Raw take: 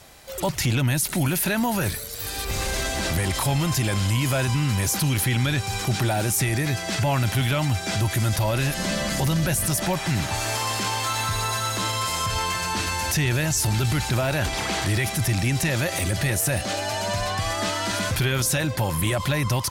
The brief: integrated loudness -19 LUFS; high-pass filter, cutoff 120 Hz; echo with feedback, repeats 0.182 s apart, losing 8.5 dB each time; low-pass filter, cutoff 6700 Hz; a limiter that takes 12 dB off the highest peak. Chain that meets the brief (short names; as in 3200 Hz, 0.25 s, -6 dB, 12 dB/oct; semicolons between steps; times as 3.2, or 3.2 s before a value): HPF 120 Hz; LPF 6700 Hz; limiter -22.5 dBFS; feedback echo 0.182 s, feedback 38%, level -8.5 dB; gain +11 dB